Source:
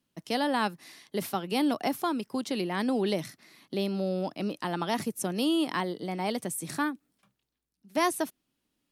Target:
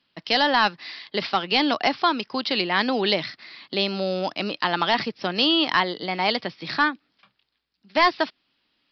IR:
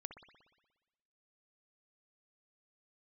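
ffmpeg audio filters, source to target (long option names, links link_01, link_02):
-af "tiltshelf=frequency=680:gain=-8,aresample=11025,asoftclip=type=hard:threshold=-17.5dB,aresample=44100,volume=7.5dB"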